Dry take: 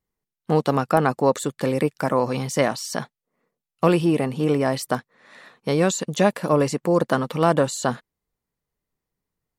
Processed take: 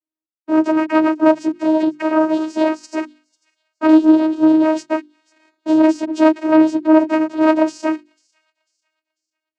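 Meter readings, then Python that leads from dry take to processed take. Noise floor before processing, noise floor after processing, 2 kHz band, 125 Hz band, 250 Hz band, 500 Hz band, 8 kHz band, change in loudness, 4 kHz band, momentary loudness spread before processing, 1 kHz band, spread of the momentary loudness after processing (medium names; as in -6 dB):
under -85 dBFS, under -85 dBFS, +3.0 dB, under -20 dB, +11.0 dB, +3.0 dB, under -10 dB, +6.5 dB, no reading, 9 LU, +3.0 dB, 11 LU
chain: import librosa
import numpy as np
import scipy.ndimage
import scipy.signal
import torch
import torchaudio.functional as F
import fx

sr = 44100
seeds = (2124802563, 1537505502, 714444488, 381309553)

p1 = fx.partial_stretch(x, sr, pct=113)
p2 = fx.peak_eq(p1, sr, hz=150.0, db=8.5, octaves=0.4)
p3 = fx.level_steps(p2, sr, step_db=18)
p4 = p2 + (p3 * 10.0 ** (2.0 / 20.0))
p5 = fx.leveller(p4, sr, passes=3)
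p6 = fx.vocoder(p5, sr, bands=8, carrier='saw', carrier_hz=314.0)
p7 = fx.hum_notches(p6, sr, base_hz=50, count=7)
p8 = p7 + fx.echo_wet_highpass(p7, sr, ms=495, feedback_pct=35, hz=3300.0, wet_db=-23.5, dry=0)
y = p8 * 10.0 ** (-4.5 / 20.0)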